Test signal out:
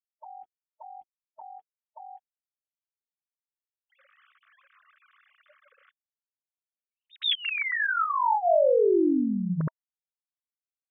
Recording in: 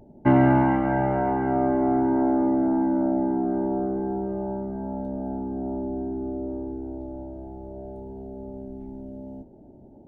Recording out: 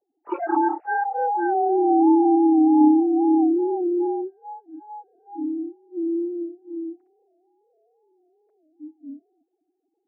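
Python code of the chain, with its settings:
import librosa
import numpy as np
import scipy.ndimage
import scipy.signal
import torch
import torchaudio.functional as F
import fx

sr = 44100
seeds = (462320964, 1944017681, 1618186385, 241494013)

y = fx.sine_speech(x, sr)
y = fx.noise_reduce_blind(y, sr, reduce_db=29)
y = fx.env_lowpass(y, sr, base_hz=1900.0, full_db=-22.5)
y = F.gain(torch.from_numpy(y), 3.5).numpy()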